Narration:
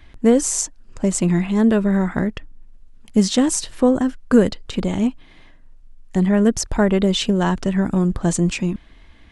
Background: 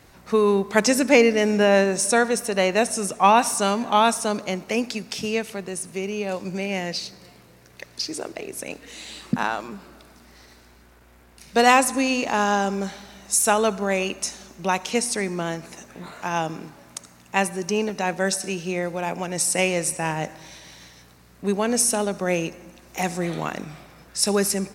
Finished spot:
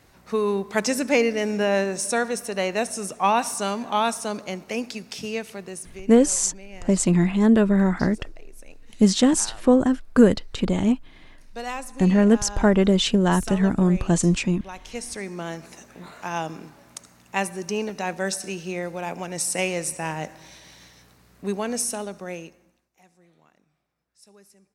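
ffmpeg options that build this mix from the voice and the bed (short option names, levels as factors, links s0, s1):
-filter_complex "[0:a]adelay=5850,volume=0.891[s0];[1:a]volume=2.66,afade=t=out:st=5.72:d=0.39:silence=0.251189,afade=t=in:st=14.72:d=0.91:silence=0.223872,afade=t=out:st=21.43:d=1.47:silence=0.0354813[s1];[s0][s1]amix=inputs=2:normalize=0"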